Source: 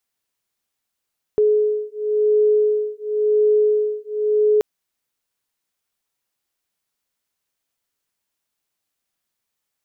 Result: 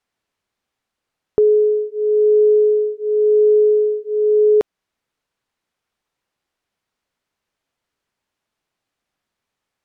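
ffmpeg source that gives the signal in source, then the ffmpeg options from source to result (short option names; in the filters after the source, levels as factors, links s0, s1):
-f lavfi -i "aevalsrc='0.126*(sin(2*PI*423*t)+sin(2*PI*423.94*t))':d=3.23:s=44100"
-filter_complex "[0:a]aemphasis=mode=reproduction:type=75fm,asplit=2[s0][s1];[s1]acompressor=threshold=0.0631:ratio=6,volume=1.06[s2];[s0][s2]amix=inputs=2:normalize=0"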